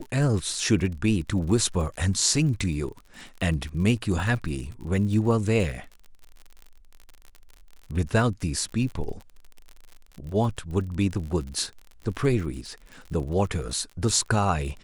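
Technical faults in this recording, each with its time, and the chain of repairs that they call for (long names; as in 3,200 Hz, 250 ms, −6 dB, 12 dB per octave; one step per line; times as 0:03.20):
surface crackle 45 per second −34 dBFS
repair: click removal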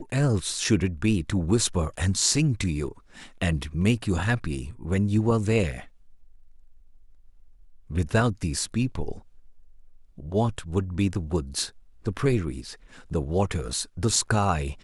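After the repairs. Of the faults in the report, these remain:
none of them is left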